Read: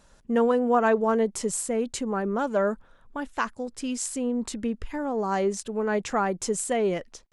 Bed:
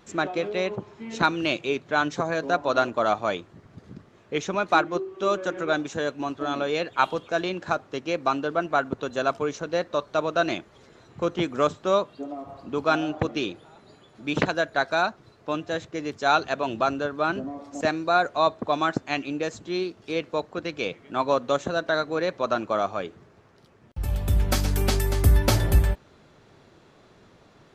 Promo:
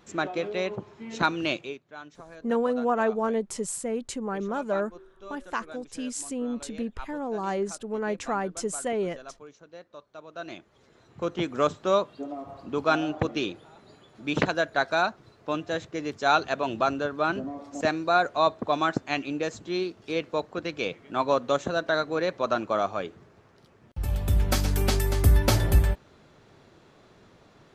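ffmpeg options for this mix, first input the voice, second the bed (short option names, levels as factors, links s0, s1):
-filter_complex "[0:a]adelay=2150,volume=0.668[s0];[1:a]volume=6.68,afade=t=out:st=1.52:d=0.27:silence=0.133352,afade=t=in:st=10.26:d=1.47:silence=0.112202[s1];[s0][s1]amix=inputs=2:normalize=0"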